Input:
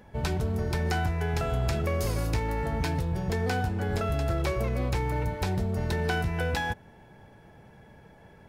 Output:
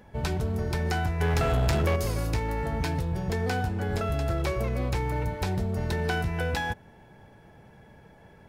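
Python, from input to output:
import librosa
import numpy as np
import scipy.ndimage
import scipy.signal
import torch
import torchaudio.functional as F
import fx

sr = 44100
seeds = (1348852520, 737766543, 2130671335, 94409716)

y = fx.leveller(x, sr, passes=2, at=(1.2, 1.96))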